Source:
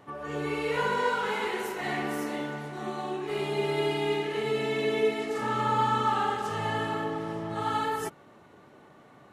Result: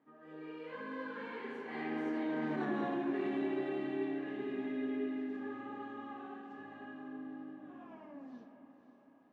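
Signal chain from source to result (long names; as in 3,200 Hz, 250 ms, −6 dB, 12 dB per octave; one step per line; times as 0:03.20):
turntable brake at the end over 1.90 s
source passing by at 0:02.63, 21 m/s, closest 2.5 metres
low-shelf EQ 340 Hz +3 dB
hollow resonant body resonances 260/1,700 Hz, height 17 dB, ringing for 75 ms
brickwall limiter −32.5 dBFS, peak gain reduction 11.5 dB
band-pass filter 200–3,000 Hz
feedback delay with all-pass diffusion 528 ms, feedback 59%, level −11.5 dB
on a send at −8 dB: convolution reverb RT60 1.9 s, pre-delay 15 ms
on the sum: level +4.5 dB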